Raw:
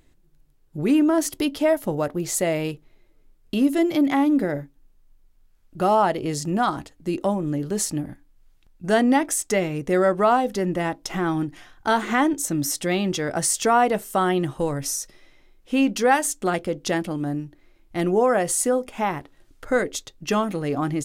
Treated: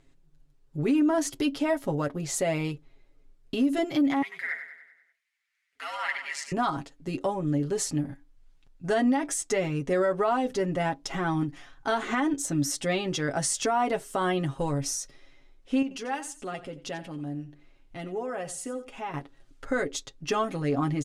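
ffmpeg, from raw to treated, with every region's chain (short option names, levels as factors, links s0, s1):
-filter_complex "[0:a]asettb=1/sr,asplit=3[s0][s1][s2];[s0]atrim=end=4.224[s3];[s1]atrim=start=4.22:end=6.52,asetpts=PTS-STARTPTS,afade=t=in:d=0.004:c=qsin,afade=t=out:st=2.296:d=0.004:c=qsin,highpass=f=2000:t=q:w=6.8,aeval=exprs='val(0)*sin(2*PI*100*n/s)':c=same,aecho=1:1:97|194|291|388|485|582:0.335|0.178|0.0941|0.0499|0.0264|0.014,atrim=end_sample=101430[s4];[s2]atrim=start=6.516[s5];[s3][s4]acrossfade=d=0.004:c1=hsin:c2=qsin[s6];[s6][s5]acrossfade=d=0.004:c1=qsin:c2=hsin,asettb=1/sr,asplit=3[s7][s8][s9];[s7]atrim=end=15.824[s10];[s8]atrim=start=15.82:end=19.14,asetpts=PTS-STARTPTS,afade=t=in:d=0.004:c=qsin,afade=t=out:st=3.316:d=0.004:c=qsin,equalizer=f=2800:t=o:w=0.24:g=5.5,acompressor=threshold=0.00562:ratio=1.5:attack=3.2:release=140:knee=1:detection=peak,aecho=1:1:89|178:0.178|0.0391,atrim=end_sample=146412[s11];[s9]atrim=start=19.136[s12];[s10][s11]acrossfade=d=0.004:c1=hsin:c2=qsin[s13];[s13][s12]acrossfade=d=0.004:c1=qsin:c2=hsin,lowpass=8500,aecho=1:1:7.3:0.71,alimiter=limit=0.237:level=0:latency=1:release=73,volume=0.596"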